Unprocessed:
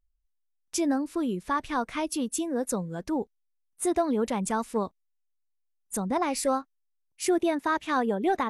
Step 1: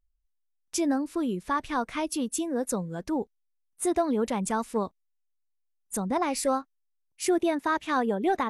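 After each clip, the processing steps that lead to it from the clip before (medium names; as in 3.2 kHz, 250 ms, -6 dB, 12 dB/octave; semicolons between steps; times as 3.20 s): no audible change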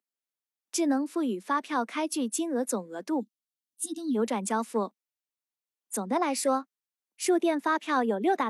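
time-frequency box 3.20–4.15 s, 330–2700 Hz -30 dB; steep high-pass 200 Hz 72 dB/octave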